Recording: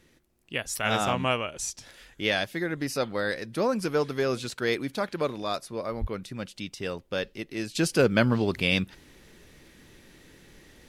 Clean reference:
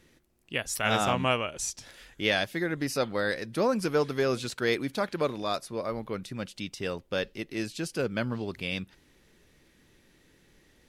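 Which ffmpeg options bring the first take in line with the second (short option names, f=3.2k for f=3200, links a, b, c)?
-filter_complex "[0:a]asplit=3[a][b][c];[a]afade=t=out:st=6:d=0.02[d];[b]highpass=f=140:w=0.5412,highpass=f=140:w=1.3066,afade=t=in:st=6:d=0.02,afade=t=out:st=6.12:d=0.02[e];[c]afade=t=in:st=6.12:d=0.02[f];[d][e][f]amix=inputs=3:normalize=0,asetnsamples=n=441:p=0,asendcmd='7.75 volume volume -8.5dB',volume=0dB"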